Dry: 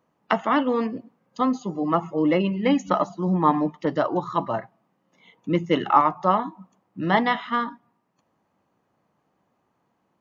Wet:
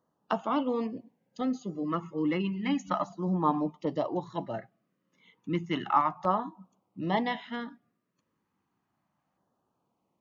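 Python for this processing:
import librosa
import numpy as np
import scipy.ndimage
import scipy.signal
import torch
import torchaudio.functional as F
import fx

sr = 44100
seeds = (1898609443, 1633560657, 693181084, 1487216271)

y = fx.filter_lfo_notch(x, sr, shape='saw_down', hz=0.32, low_hz=380.0, high_hz=2500.0, q=1.3)
y = y * librosa.db_to_amplitude(-6.5)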